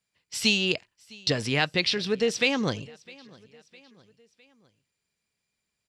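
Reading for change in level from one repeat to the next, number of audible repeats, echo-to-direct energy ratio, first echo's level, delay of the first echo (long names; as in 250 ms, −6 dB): −6.0 dB, 2, −23.0 dB, −24.0 dB, 657 ms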